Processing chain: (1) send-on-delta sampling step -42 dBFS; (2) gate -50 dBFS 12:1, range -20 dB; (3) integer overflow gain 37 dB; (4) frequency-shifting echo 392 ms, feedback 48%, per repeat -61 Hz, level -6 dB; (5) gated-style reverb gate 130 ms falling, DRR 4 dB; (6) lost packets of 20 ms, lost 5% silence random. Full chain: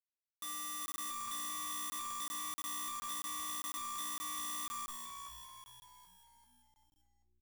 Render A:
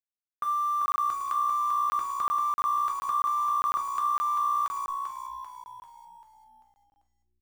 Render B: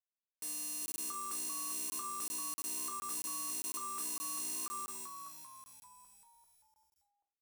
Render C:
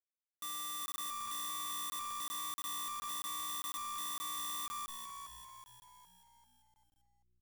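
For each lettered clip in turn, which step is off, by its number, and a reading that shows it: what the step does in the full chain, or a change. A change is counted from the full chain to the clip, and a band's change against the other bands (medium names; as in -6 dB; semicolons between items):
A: 3, crest factor change -2.5 dB; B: 1, distortion -23 dB; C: 5, crest factor change -2.0 dB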